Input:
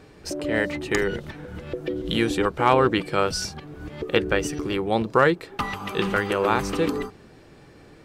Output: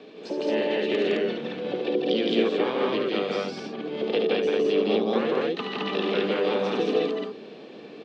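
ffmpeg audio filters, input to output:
ffmpeg -i in.wav -filter_complex "[0:a]acrossover=split=310|2500[link_01][link_02][link_03];[link_01]acompressor=threshold=-35dB:ratio=4[link_04];[link_02]acompressor=threshold=-33dB:ratio=4[link_05];[link_03]acompressor=threshold=-45dB:ratio=4[link_06];[link_04][link_05][link_06]amix=inputs=3:normalize=0,asplit=2[link_07][link_08];[link_08]asetrate=66075,aresample=44100,atempo=0.66742,volume=-7dB[link_09];[link_07][link_09]amix=inputs=2:normalize=0,aexciter=amount=3.8:drive=2.6:freq=2700,highpass=frequency=210:width=0.5412,highpass=frequency=210:width=1.3066,equalizer=frequency=220:width_type=q:width=4:gain=7,equalizer=frequency=440:width_type=q:width=4:gain=8,equalizer=frequency=880:width_type=q:width=4:gain=-3,equalizer=frequency=1400:width_type=q:width=4:gain=-5,equalizer=frequency=2000:width_type=q:width=4:gain=-3,equalizer=frequency=2900:width_type=q:width=4:gain=-3,lowpass=frequency=3500:width=0.5412,lowpass=frequency=3500:width=1.3066,asplit=2[link_10][link_11];[link_11]aecho=0:1:72.89|163.3|215.7:0.501|0.794|0.891[link_12];[link_10][link_12]amix=inputs=2:normalize=0" out.wav

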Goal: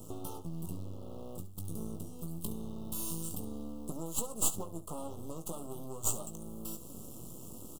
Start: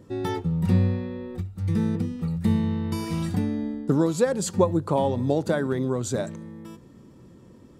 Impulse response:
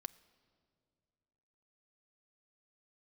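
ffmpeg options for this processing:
-af "asetnsamples=nb_out_samples=441:pad=0,asendcmd='1.57 highshelf g 10',highshelf=frequency=9600:gain=2,acompressor=threshold=-43dB:ratio=5,aexciter=amount=7.1:drive=6.2:freq=6500,aeval=exprs='max(val(0),0)':channel_layout=same,acrusher=bits=6:mode=log:mix=0:aa=0.000001,asuperstop=centerf=1900:order=20:qfactor=1.4,aecho=1:1:18|69:0.398|0.168,volume=4dB"

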